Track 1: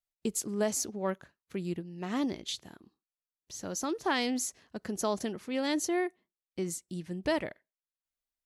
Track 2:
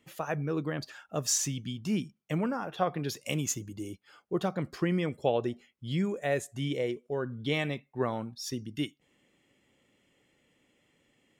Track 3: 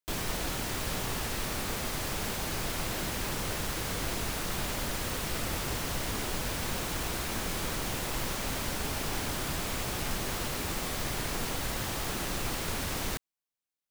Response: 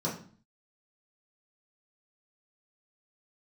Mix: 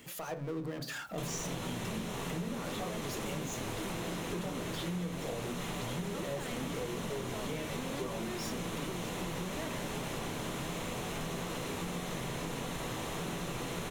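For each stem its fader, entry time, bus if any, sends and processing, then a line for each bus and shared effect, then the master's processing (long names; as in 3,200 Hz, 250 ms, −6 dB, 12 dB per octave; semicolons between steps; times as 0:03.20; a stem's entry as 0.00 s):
−12.5 dB, 2.30 s, bus A, no send, low-pass filter 3,600 Hz 24 dB per octave
−9.5 dB, 0.00 s, bus A, send −6.5 dB, high-shelf EQ 6,200 Hz +9 dB; sample-and-hold tremolo, depth 70%
−2.5 dB, 1.10 s, no bus, send −10.5 dB, Bessel low-pass filter 11,000 Hz, order 2; notch filter 4,700 Hz, Q 12
bus A: 0.0 dB, power curve on the samples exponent 0.5; brickwall limiter −33 dBFS, peak gain reduction 12 dB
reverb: on, RT60 0.45 s, pre-delay 3 ms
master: downward compressor, threshold −34 dBFS, peak gain reduction 11.5 dB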